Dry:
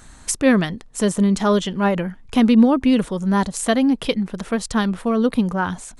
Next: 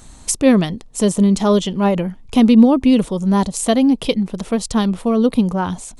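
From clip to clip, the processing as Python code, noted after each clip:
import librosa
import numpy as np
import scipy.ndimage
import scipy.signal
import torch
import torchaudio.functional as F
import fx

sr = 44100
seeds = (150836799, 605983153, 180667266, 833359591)

y = fx.peak_eq(x, sr, hz=1600.0, db=-10.0, octaves=0.79)
y = F.gain(torch.from_numpy(y), 3.5).numpy()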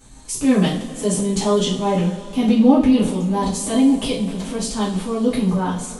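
y = fx.transient(x, sr, attack_db=-4, sustain_db=7)
y = fx.rev_double_slope(y, sr, seeds[0], early_s=0.39, late_s=3.7, knee_db=-20, drr_db=-9.5)
y = F.gain(torch.from_numpy(y), -13.0).numpy()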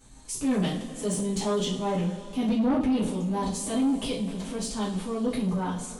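y = 10.0 ** (-12.0 / 20.0) * np.tanh(x / 10.0 ** (-12.0 / 20.0))
y = F.gain(torch.from_numpy(y), -7.0).numpy()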